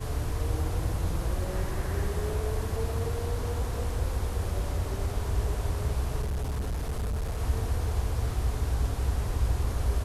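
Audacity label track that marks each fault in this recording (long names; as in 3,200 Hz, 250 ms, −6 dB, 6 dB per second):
6.220000	7.380000	clipping −27 dBFS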